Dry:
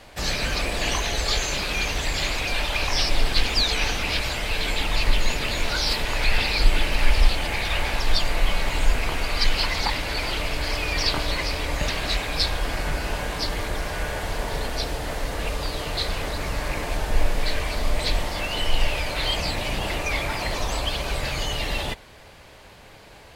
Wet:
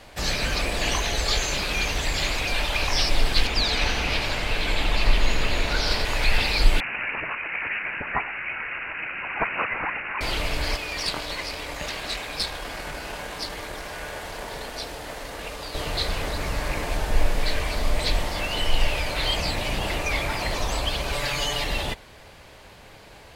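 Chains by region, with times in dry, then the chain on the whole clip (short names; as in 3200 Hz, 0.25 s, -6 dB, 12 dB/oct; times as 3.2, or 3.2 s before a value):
3.47–6.05 high shelf 5200 Hz -8 dB + split-band echo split 1300 Hz, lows 0.145 s, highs 86 ms, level -5 dB
6.8–10.21 brick-wall FIR band-pass 1300–9900 Hz + careless resampling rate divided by 8×, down none, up filtered
10.76–15.75 low shelf 170 Hz -10 dB + tube stage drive 15 dB, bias 0.7
21.12–21.64 low shelf 330 Hz -7 dB + comb 7 ms, depth 96%
whole clip: dry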